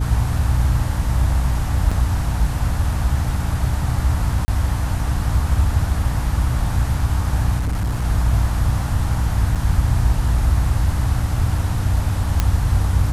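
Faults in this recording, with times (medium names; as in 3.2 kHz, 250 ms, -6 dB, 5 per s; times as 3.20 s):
hum 60 Hz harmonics 5 -23 dBFS
1.91 s: dropout 4.9 ms
4.45–4.48 s: dropout 30 ms
7.58–8.05 s: clipped -17.5 dBFS
9.55–9.56 s: dropout 6.3 ms
12.40 s: pop -3 dBFS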